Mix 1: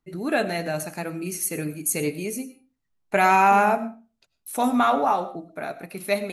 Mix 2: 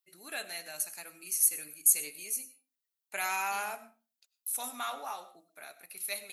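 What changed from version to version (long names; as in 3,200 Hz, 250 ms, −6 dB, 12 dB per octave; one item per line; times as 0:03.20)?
second voice: remove high-frequency loss of the air 430 metres
master: add first difference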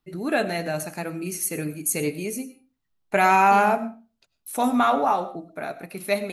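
master: remove first difference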